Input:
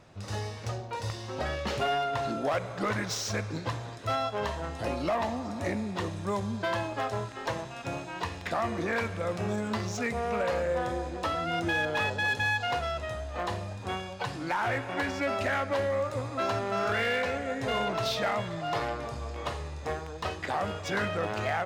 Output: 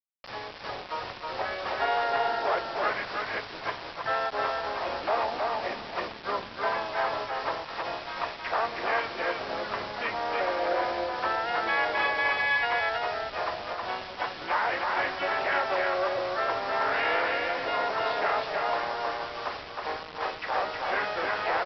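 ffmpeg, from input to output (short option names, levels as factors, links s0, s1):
-filter_complex "[0:a]aeval=exprs='val(0)+0.00112*(sin(2*PI*50*n/s)+sin(2*PI*2*50*n/s)/2+sin(2*PI*3*50*n/s)/3+sin(2*PI*4*50*n/s)/4+sin(2*PI*5*50*n/s)/5)':c=same,acrossover=split=490 2500:gain=0.0631 1 0.0708[s0][s1][s2];[s0][s1][s2]amix=inputs=3:normalize=0,asplit=4[s3][s4][s5][s6];[s4]asetrate=29433,aresample=44100,atempo=1.49831,volume=0.316[s7];[s5]asetrate=52444,aresample=44100,atempo=0.840896,volume=0.355[s8];[s6]asetrate=58866,aresample=44100,atempo=0.749154,volume=0.447[s9];[s3][s7][s8][s9]amix=inputs=4:normalize=0,aresample=11025,acrusher=bits=6:mix=0:aa=0.000001,aresample=44100,aecho=1:1:317:0.708,volume=1.26"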